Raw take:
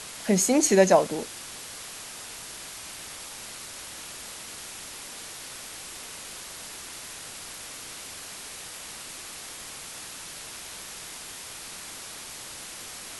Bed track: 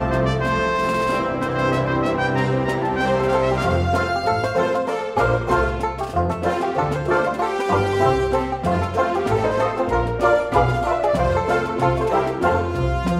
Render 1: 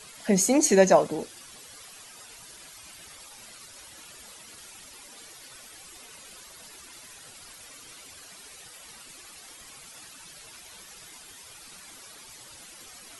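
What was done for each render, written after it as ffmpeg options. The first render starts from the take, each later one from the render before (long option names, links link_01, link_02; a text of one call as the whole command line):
ffmpeg -i in.wav -af "afftdn=noise_reduction=12:noise_floor=-41" out.wav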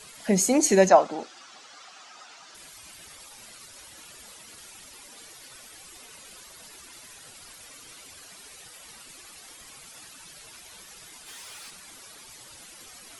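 ffmpeg -i in.wav -filter_complex "[0:a]asettb=1/sr,asplit=3[link_01][link_02][link_03];[link_01]atrim=end=0.894[link_04];[link_02]atrim=start=0.89:end=2.55,asetpts=PTS-STARTPTS,afade=type=in:duration=0.004:curve=qsin,afade=type=out:start_time=1.656:duration=0.004:curve=qsin,highpass=270,equalizer=frequency=450:width_type=q:width=4:gain=-6,equalizer=frequency=760:width_type=q:width=4:gain=7,equalizer=frequency=1300:width_type=q:width=4:gain=8,lowpass=frequency=6600:width=0.5412,lowpass=frequency=6600:width=1.3066[link_05];[link_03]atrim=start=2.546[link_06];[link_04][link_05]acrossfade=duration=0.004:curve1=hsin:curve2=qsin[link_07];[link_07][link_06]acrossfade=duration=0.004:curve1=qsin:curve2=hsin,asplit=3[link_08][link_09][link_10];[link_08]afade=type=out:start_time=11.26:duration=0.02[link_11];[link_09]asplit=2[link_12][link_13];[link_13]highpass=frequency=720:poles=1,volume=16dB,asoftclip=type=tanh:threshold=-35.5dB[link_14];[link_12][link_14]amix=inputs=2:normalize=0,lowpass=frequency=7800:poles=1,volume=-6dB,afade=type=in:start_time=11.26:duration=0.02,afade=type=out:start_time=11.69:duration=0.02[link_15];[link_10]afade=type=in:start_time=11.69:duration=0.02[link_16];[link_11][link_15][link_16]amix=inputs=3:normalize=0" out.wav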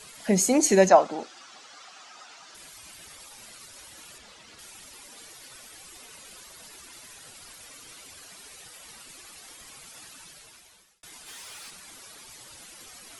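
ffmpeg -i in.wav -filter_complex "[0:a]asettb=1/sr,asplit=3[link_01][link_02][link_03];[link_01]atrim=end=4.184[link_04];[link_02]atrim=start=4.18:end=4.59,asetpts=PTS-STARTPTS,afade=type=in:duration=0.004:curve=qsin,afade=type=out:start_time=0.406:duration=0.004:curve=qsin,lowpass=5500[link_05];[link_03]atrim=start=4.586[link_06];[link_04][link_05]acrossfade=duration=0.004:curve1=hsin:curve2=qsin[link_07];[link_07][link_06]acrossfade=duration=0.004:curve1=qsin:curve2=hsin,asplit=2[link_08][link_09];[link_08]atrim=end=11.03,asetpts=PTS-STARTPTS,afade=type=out:start_time=10.18:duration=0.85[link_10];[link_09]atrim=start=11.03,asetpts=PTS-STARTPTS,afade=type=in:duration=0.004:curve=hsin[link_11];[link_10][link_11]concat=n=2:v=0:a=1" out.wav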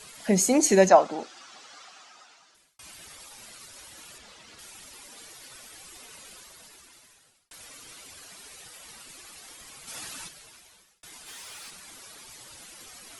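ffmpeg -i in.wav -filter_complex "[0:a]asplit=3[link_01][link_02][link_03];[link_01]afade=type=out:start_time=9.87:duration=0.02[link_04];[link_02]acontrast=89,afade=type=in:start_time=9.87:duration=0.02,afade=type=out:start_time=10.27:duration=0.02[link_05];[link_03]afade=type=in:start_time=10.27:duration=0.02[link_06];[link_04][link_05][link_06]amix=inputs=3:normalize=0,asplit=3[link_07][link_08][link_09];[link_07]atrim=end=2.79,asetpts=PTS-STARTPTS,afade=type=out:start_time=1.76:duration=1.03[link_10];[link_08]atrim=start=2.79:end=7.51,asetpts=PTS-STARTPTS,afade=type=in:duration=0.004:curve=hsin,afade=type=out:start_time=3.45:duration=1.27[link_11];[link_09]atrim=start=7.51,asetpts=PTS-STARTPTS,afade=type=in:duration=0.004:curve=hsin[link_12];[link_10][link_11][link_12]concat=n=3:v=0:a=1" out.wav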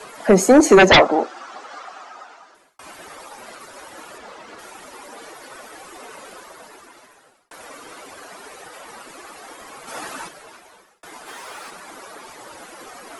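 ffmpeg -i in.wav -filter_complex "[0:a]acrossover=split=260|1600[link_01][link_02][link_03];[link_02]aeval=exprs='0.501*sin(PI/2*4.47*val(0)/0.501)':channel_layout=same[link_04];[link_03]aphaser=in_gain=1:out_gain=1:delay=1.9:decay=0.26:speed=0.57:type=sinusoidal[link_05];[link_01][link_04][link_05]amix=inputs=3:normalize=0" out.wav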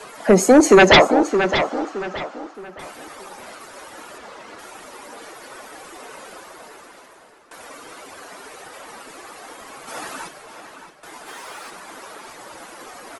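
ffmpeg -i in.wav -filter_complex "[0:a]asplit=2[link_01][link_02];[link_02]adelay=619,lowpass=frequency=4000:poles=1,volume=-8.5dB,asplit=2[link_03][link_04];[link_04]adelay=619,lowpass=frequency=4000:poles=1,volume=0.35,asplit=2[link_05][link_06];[link_06]adelay=619,lowpass=frequency=4000:poles=1,volume=0.35,asplit=2[link_07][link_08];[link_08]adelay=619,lowpass=frequency=4000:poles=1,volume=0.35[link_09];[link_01][link_03][link_05][link_07][link_09]amix=inputs=5:normalize=0" out.wav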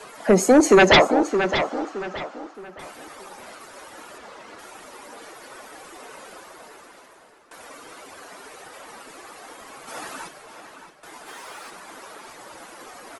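ffmpeg -i in.wav -af "volume=-3dB" out.wav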